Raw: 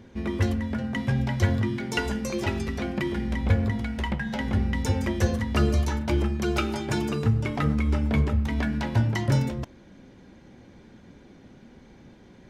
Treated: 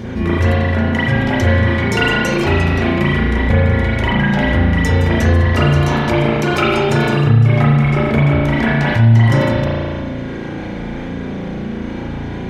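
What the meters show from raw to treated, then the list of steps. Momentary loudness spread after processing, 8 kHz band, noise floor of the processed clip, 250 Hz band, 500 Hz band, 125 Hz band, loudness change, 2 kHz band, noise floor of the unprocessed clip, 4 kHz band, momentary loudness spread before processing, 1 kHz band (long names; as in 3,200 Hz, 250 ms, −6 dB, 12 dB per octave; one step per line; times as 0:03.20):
13 LU, +6.0 dB, −25 dBFS, +11.0 dB, +13.5 dB, +12.5 dB, +11.5 dB, +15.5 dB, −51 dBFS, +12.5 dB, 5 LU, +14.5 dB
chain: spring reverb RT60 1.3 s, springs 35 ms, chirp 55 ms, DRR −10 dB
envelope flattener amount 50%
level −1.5 dB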